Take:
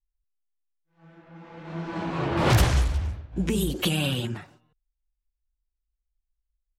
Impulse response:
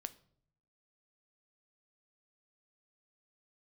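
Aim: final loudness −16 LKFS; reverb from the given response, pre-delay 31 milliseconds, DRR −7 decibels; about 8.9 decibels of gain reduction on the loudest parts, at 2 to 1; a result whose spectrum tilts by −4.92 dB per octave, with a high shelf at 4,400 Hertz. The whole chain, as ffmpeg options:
-filter_complex "[0:a]highshelf=frequency=4400:gain=4,acompressor=threshold=-31dB:ratio=2,asplit=2[link_01][link_02];[1:a]atrim=start_sample=2205,adelay=31[link_03];[link_02][link_03]afir=irnorm=-1:irlink=0,volume=10.5dB[link_04];[link_01][link_04]amix=inputs=2:normalize=0,volume=7.5dB"

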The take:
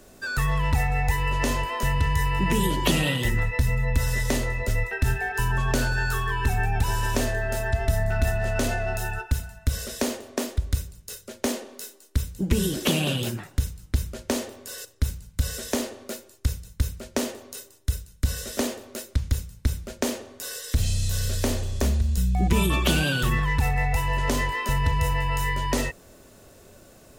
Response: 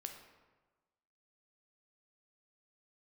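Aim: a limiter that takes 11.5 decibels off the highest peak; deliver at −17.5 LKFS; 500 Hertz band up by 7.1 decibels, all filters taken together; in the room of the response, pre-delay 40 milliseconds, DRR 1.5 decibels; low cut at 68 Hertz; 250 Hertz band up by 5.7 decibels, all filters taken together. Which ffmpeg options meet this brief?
-filter_complex "[0:a]highpass=68,equalizer=frequency=250:width_type=o:gain=5.5,equalizer=frequency=500:width_type=o:gain=7.5,alimiter=limit=-15.5dB:level=0:latency=1,asplit=2[link_01][link_02];[1:a]atrim=start_sample=2205,adelay=40[link_03];[link_02][link_03]afir=irnorm=-1:irlink=0,volume=2dB[link_04];[link_01][link_04]amix=inputs=2:normalize=0,volume=7.5dB"

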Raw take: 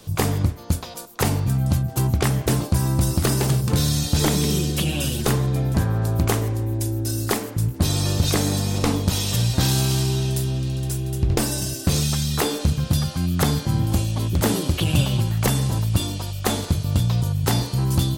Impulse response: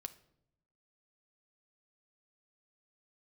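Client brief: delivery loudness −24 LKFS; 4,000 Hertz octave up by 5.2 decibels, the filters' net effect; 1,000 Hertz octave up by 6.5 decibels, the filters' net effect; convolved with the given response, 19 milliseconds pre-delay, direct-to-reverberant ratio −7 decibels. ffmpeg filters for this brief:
-filter_complex "[0:a]equalizer=frequency=1000:width_type=o:gain=8,equalizer=frequency=4000:width_type=o:gain=6,asplit=2[link_01][link_02];[1:a]atrim=start_sample=2205,adelay=19[link_03];[link_02][link_03]afir=irnorm=-1:irlink=0,volume=11dB[link_04];[link_01][link_04]amix=inputs=2:normalize=0,volume=-11dB"

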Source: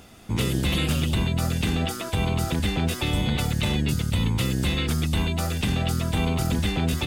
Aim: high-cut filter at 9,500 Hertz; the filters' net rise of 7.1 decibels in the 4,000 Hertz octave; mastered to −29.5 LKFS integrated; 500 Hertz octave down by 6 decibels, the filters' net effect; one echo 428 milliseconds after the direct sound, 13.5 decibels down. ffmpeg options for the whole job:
ffmpeg -i in.wav -af "lowpass=9500,equalizer=frequency=500:width_type=o:gain=-8.5,equalizer=frequency=4000:width_type=o:gain=9,aecho=1:1:428:0.211,volume=-6dB" out.wav

